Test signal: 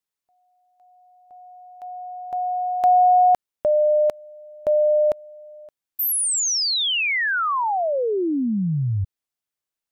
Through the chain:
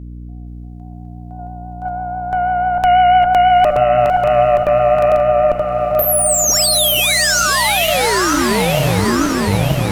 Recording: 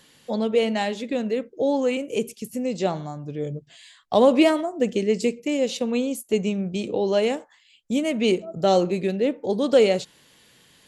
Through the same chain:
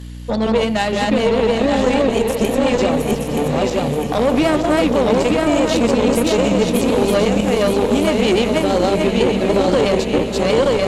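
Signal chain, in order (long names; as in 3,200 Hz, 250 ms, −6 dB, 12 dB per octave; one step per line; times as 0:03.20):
feedback delay that plays each chunk backwards 463 ms, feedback 64%, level −0.5 dB
in parallel at −2.5 dB: downward compressor, threshold −27 dBFS
on the sum: brickwall limiter −11.5 dBFS
pitch vibrato 6.1 Hz 34 cents
mains hum 60 Hz, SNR 14 dB
harmonic generator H 3 −23 dB, 4 −17 dB, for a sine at −10 dBFS
on a send: feedback delay with all-pass diffusion 824 ms, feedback 54%, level −10 dB
on the sum: level +5 dB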